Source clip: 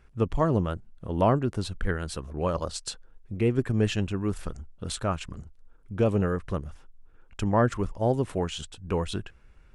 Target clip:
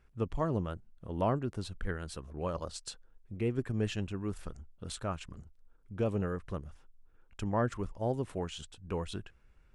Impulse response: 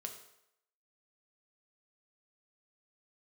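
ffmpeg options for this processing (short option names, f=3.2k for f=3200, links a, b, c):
-af "volume=-8dB"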